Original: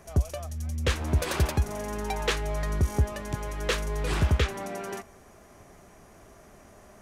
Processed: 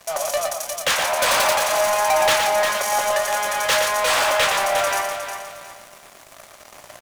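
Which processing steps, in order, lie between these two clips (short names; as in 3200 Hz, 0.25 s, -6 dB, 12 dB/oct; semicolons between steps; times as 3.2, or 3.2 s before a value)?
Chebyshev high-pass 560 Hz, order 5; sample leveller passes 5; doubler 18 ms -11.5 dB; on a send: echo 0.117 s -5.5 dB; on the sum: lo-fi delay 0.359 s, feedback 35%, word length 8-bit, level -8 dB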